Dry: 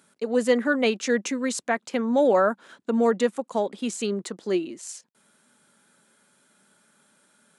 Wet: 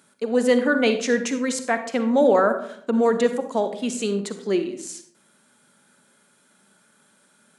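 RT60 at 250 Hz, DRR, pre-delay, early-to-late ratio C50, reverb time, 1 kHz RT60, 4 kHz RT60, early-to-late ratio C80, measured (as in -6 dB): 0.75 s, 8.5 dB, 40 ms, 9.5 dB, 0.60 s, 0.60 s, 0.35 s, 13.0 dB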